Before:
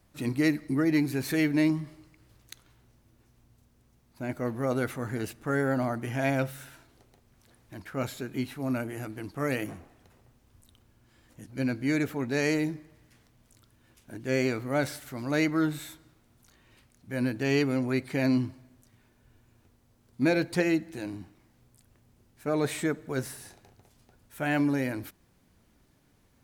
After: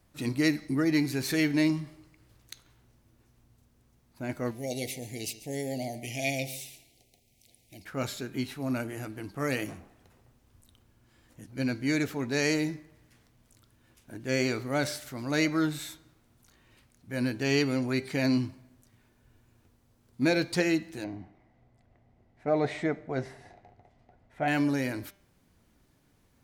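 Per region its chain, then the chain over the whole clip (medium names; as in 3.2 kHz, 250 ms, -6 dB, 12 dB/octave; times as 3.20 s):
4.51–7.85 s: elliptic band-stop 750–2200 Hz, stop band 60 dB + tilt shelf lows -6 dB, about 1.2 kHz + delay 141 ms -15.5 dB
21.04–24.48 s: tape spacing loss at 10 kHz 24 dB + small resonant body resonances 700/2000 Hz, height 12 dB, ringing for 20 ms
whole clip: de-hum 198.3 Hz, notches 33; dynamic bell 5.1 kHz, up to +7 dB, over -52 dBFS, Q 0.81; trim -1 dB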